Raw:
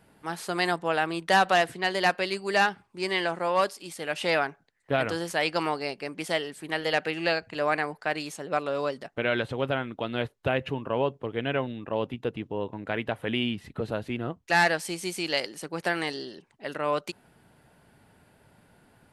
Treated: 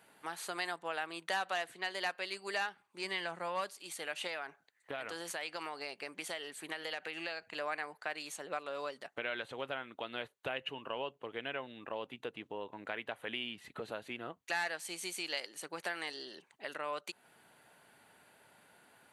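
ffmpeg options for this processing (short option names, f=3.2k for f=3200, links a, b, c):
-filter_complex "[0:a]asettb=1/sr,asplit=3[a][b][c];[a]atrim=end=3.044[d];[b]atrim=start=3.04:end=3.75,asetpts=PTS-STARTPTS,afade=t=in:d=0.004:c=qsin,afade=t=out:st=0.706:d=0.004:c=qsin,equalizer=f=170:t=o:w=0.77:g=9[e];[c]atrim=start=3.746[f];[d][e]acrossfade=d=0.004:c1=hsin:c2=qsin[g];[g][f]acrossfade=d=0.004:c1=qsin:c2=hsin,asettb=1/sr,asplit=3[h][i][j];[h]atrim=end=4.274[k];[i]atrim=start=4.27:end=7.57,asetpts=PTS-STARTPTS,afade=t=in:d=0.004:c=qsin,afade=t=out:st=3.296:d=0.004:c=qsin,acompressor=threshold=-28dB:ratio=3:attack=3.2:release=140:knee=1:detection=peak[l];[j]atrim=start=7.566[m];[k][l]acrossfade=d=0.004:c1=hsin:c2=qsin[n];[n][m]acrossfade=d=0.004:c1=qsin:c2=hsin,asettb=1/sr,asplit=3[o][p][q];[o]atrim=end=10.564[r];[p]atrim=start=10.56:end=11.23,asetpts=PTS-STARTPTS,afade=t=in:d=0.004:c=qsin,afade=t=out:st=0.666:d=0.004:c=qsin,equalizer=f=2.9k:w=7.3:g=9.5[s];[q]atrim=start=11.226[t];[r][s]acrossfade=d=0.004:c1=hsin:c2=qsin[u];[u][t]acrossfade=d=0.004:c1=qsin:c2=hsin,highpass=f=910:p=1,bandreject=f=5.2k:w=7.5,acompressor=threshold=-44dB:ratio=2,volume=1.5dB"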